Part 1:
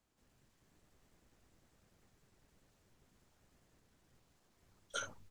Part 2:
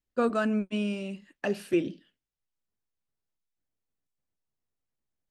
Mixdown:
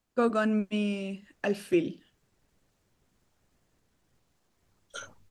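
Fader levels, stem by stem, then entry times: -0.5, +0.5 dB; 0.00, 0.00 s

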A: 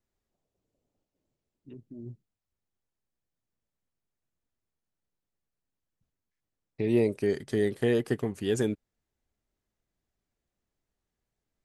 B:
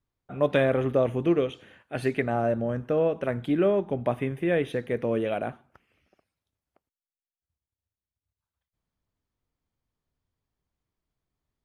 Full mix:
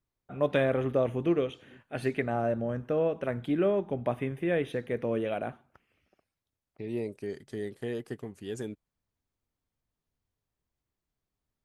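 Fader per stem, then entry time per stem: -9.5, -3.5 dB; 0.00, 0.00 s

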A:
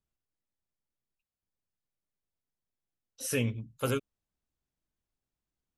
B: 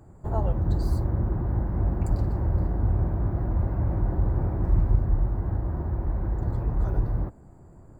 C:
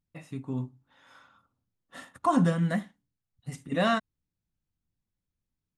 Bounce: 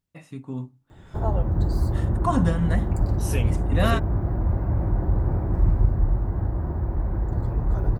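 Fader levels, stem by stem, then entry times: -1.0, +2.0, +0.5 dB; 0.00, 0.90, 0.00 s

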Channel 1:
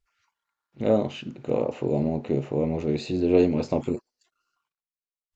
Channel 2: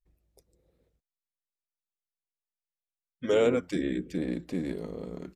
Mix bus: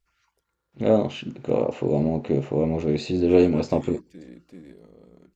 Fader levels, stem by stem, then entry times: +2.5, -12.5 dB; 0.00, 0.00 s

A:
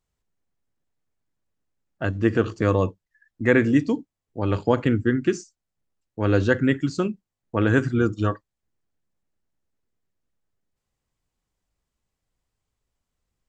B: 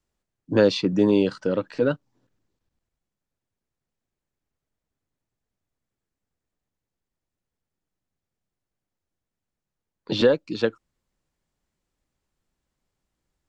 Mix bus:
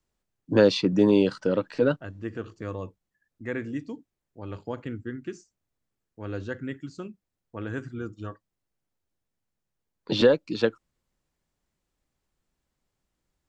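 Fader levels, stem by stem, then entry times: -14.0, -0.5 dB; 0.00, 0.00 s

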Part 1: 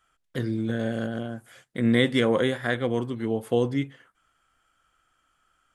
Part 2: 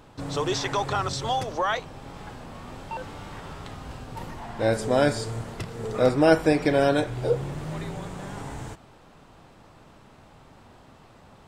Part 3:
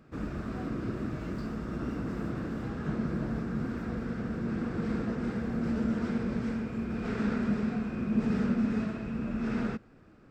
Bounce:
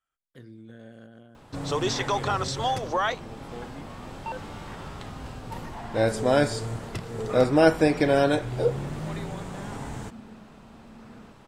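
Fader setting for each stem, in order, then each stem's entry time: -18.5, 0.0, -17.0 dB; 0.00, 1.35, 1.55 s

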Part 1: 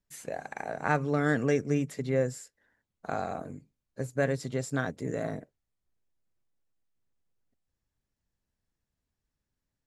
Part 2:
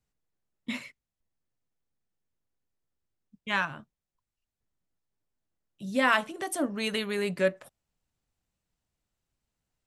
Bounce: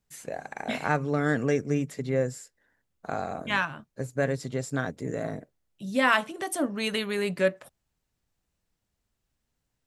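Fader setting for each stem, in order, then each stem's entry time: +1.0, +1.5 dB; 0.00, 0.00 s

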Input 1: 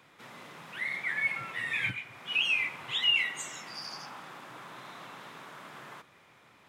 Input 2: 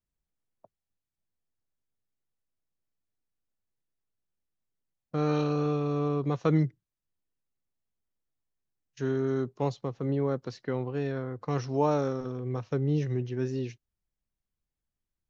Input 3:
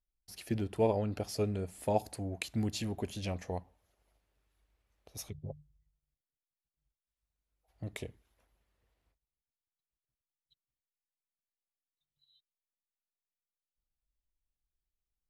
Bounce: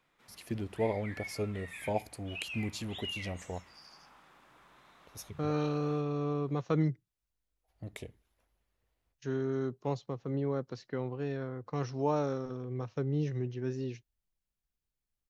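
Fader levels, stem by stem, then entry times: -14.5, -4.5, -2.5 dB; 0.00, 0.25, 0.00 s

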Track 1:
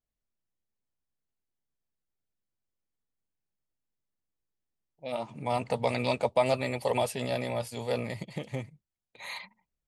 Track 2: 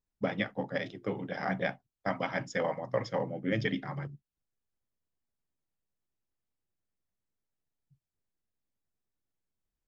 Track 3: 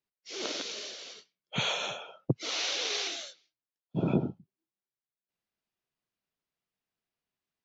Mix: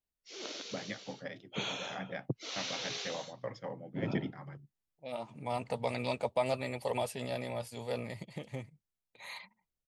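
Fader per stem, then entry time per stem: -6.0, -9.5, -7.5 dB; 0.00, 0.50, 0.00 s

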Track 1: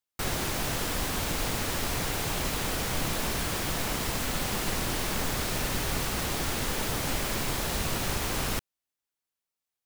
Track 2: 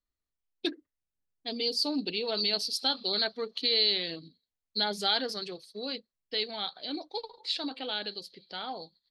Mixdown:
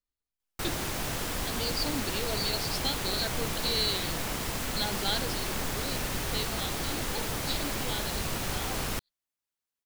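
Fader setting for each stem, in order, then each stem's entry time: -2.5, -4.0 dB; 0.40, 0.00 s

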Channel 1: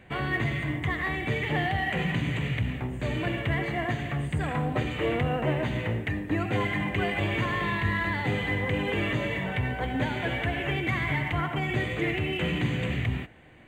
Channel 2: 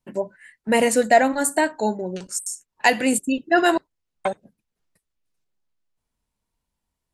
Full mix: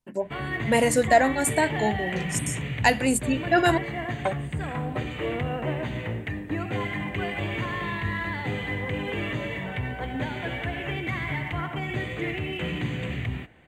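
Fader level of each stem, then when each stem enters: -2.0, -3.0 dB; 0.20, 0.00 s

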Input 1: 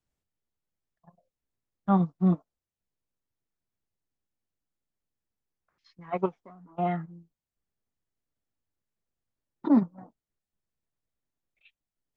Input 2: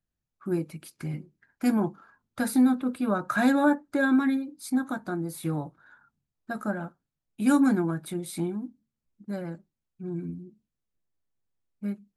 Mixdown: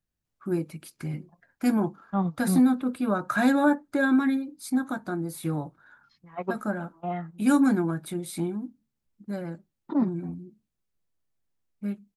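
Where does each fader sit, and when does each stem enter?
-3.5, +0.5 dB; 0.25, 0.00 s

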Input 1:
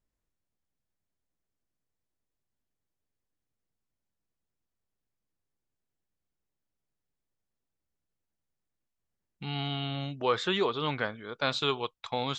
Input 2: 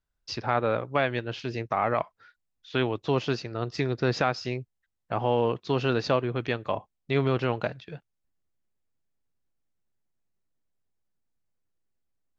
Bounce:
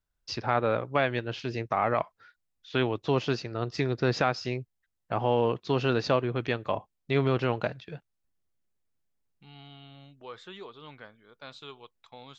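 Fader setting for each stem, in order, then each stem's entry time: -16.0, -0.5 dB; 0.00, 0.00 s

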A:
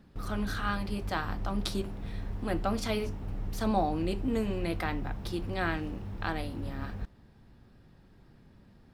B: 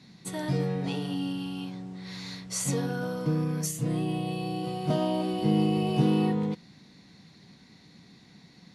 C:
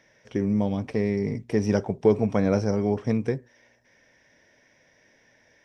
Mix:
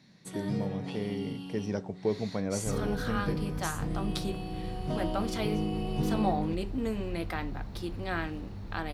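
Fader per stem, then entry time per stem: -2.0, -7.0, -10.0 dB; 2.50, 0.00, 0.00 s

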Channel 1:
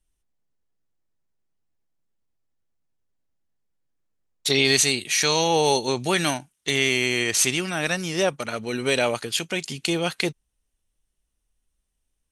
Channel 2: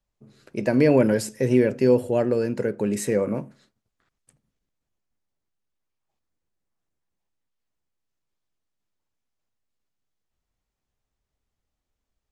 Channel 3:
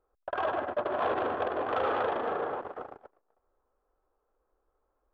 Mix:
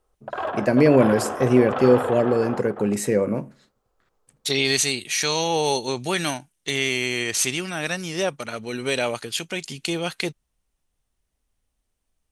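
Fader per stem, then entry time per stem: -2.0, +2.0, +2.5 dB; 0.00, 0.00, 0.00 s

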